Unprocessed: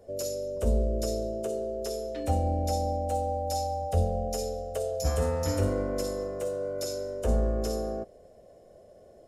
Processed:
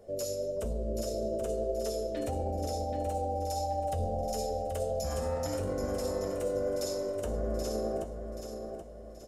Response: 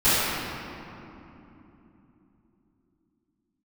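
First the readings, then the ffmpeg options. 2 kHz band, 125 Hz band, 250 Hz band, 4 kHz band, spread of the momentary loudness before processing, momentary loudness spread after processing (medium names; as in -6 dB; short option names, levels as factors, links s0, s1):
-3.5 dB, -6.5 dB, -3.5 dB, -3.0 dB, 6 LU, 5 LU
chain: -filter_complex "[0:a]alimiter=level_in=1.26:limit=0.0631:level=0:latency=1:release=16,volume=0.794,flanger=delay=4.4:depth=5.7:regen=55:speed=1.6:shape=triangular,asplit=2[s0][s1];[s1]aecho=0:1:779|1558|2337|3116:0.422|0.164|0.0641|0.025[s2];[s0][s2]amix=inputs=2:normalize=0,volume=1.58"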